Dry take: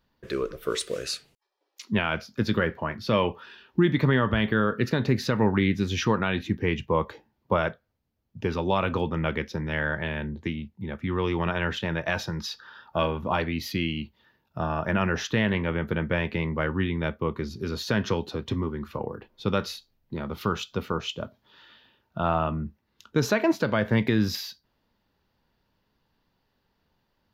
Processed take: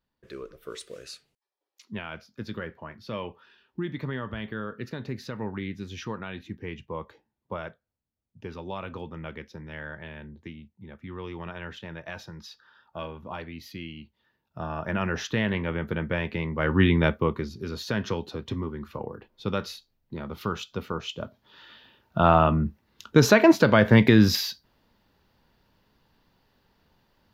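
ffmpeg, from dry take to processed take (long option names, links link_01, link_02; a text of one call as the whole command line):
ffmpeg -i in.wav -af "volume=17.5dB,afade=type=in:start_time=14.03:duration=1.19:silence=0.354813,afade=type=in:start_time=16.57:duration=0.3:silence=0.316228,afade=type=out:start_time=16.87:duration=0.65:silence=0.281838,afade=type=in:start_time=21.06:duration=1.14:silence=0.334965" out.wav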